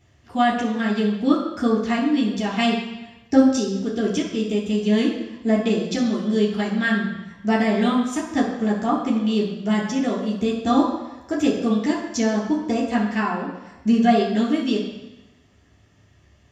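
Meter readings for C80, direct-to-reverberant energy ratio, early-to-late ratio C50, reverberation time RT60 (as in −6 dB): 6.5 dB, −4.0 dB, 4.5 dB, 1.0 s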